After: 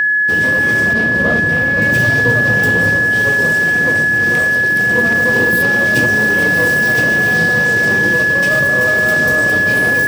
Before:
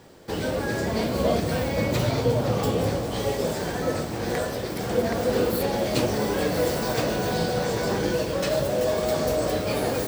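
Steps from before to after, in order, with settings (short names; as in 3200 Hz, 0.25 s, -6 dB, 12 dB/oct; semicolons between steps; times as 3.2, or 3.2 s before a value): minimum comb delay 0.36 ms; HPF 110 Hz 12 dB/oct; tone controls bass +5 dB, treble +2 dB; whine 1700 Hz -15 dBFS; 0.93–1.82 high shelf 4700 Hz -11 dB; gain +4.5 dB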